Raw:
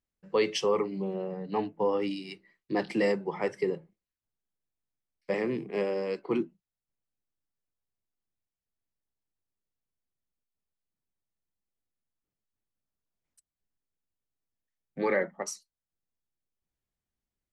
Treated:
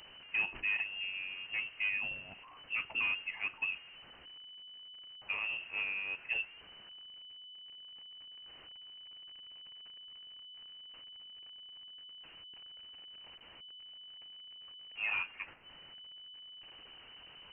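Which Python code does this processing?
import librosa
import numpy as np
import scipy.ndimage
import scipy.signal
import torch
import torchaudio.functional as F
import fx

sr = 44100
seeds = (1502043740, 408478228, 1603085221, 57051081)

y = fx.delta_mod(x, sr, bps=32000, step_db=-40.5)
y = fx.freq_invert(y, sr, carrier_hz=3000)
y = y * 10.0 ** (-7.5 / 20.0)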